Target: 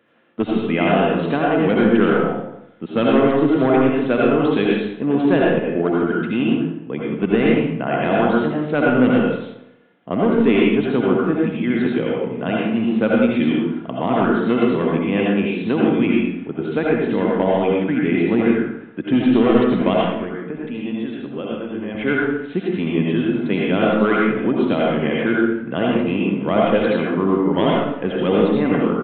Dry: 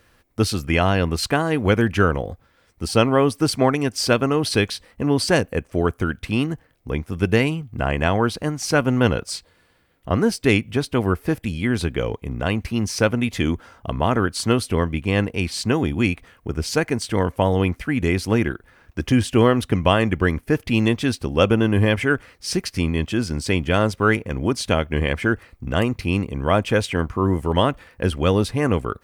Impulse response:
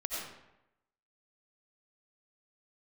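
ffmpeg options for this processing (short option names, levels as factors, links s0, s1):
-filter_complex "[0:a]highpass=f=180:w=0.5412,highpass=f=180:w=1.3066,lowshelf=f=490:g=9.5,asettb=1/sr,asplit=3[s0][s1][s2];[s0]atrim=end=19.934[s3];[s1]atrim=start=19.93:end=21.95,asetpts=PTS-STARTPTS,afade=t=in:d=0.004:c=qsin,afade=t=out:st=2.016:d=0.004:c=qsin,acompressor=threshold=0.0631:ratio=4[s4];[s2]atrim=start=21.946[s5];[s3][s4]acrossfade=d=0.004:c1=hsin:c2=qsin[s6];[s6][s5]acrossfade=d=0.004:c1=qsin:c2=hsin,volume=1.78,asoftclip=hard,volume=0.562,aresample=8000,aresample=44100[s7];[1:a]atrim=start_sample=2205,asetrate=48510,aresample=44100[s8];[s7][s8]afir=irnorm=-1:irlink=0,volume=0.75"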